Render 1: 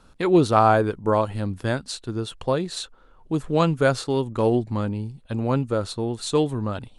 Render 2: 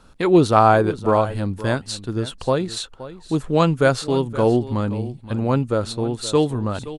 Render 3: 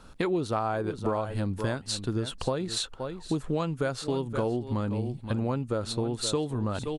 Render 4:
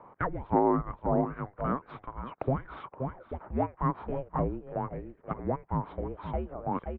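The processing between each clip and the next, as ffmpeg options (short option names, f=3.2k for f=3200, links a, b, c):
-af "aecho=1:1:522:0.168,volume=3dB"
-af "acompressor=threshold=-25dB:ratio=10"
-af "highpass=350,highpass=f=590:t=q:w=0.5412,highpass=f=590:t=q:w=1.307,lowpass=f=2k:t=q:w=0.5176,lowpass=f=2k:t=q:w=0.7071,lowpass=f=2k:t=q:w=1.932,afreqshift=-390,volume=6.5dB"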